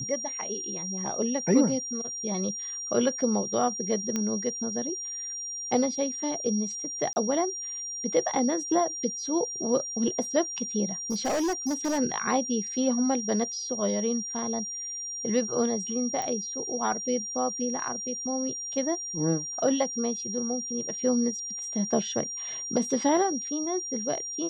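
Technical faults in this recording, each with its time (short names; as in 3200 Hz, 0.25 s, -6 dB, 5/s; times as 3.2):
tone 5700 Hz -33 dBFS
4.16 pop -15 dBFS
7.13–7.16 gap 30 ms
11.1–11.99 clipped -24 dBFS
16.22 pop -18 dBFS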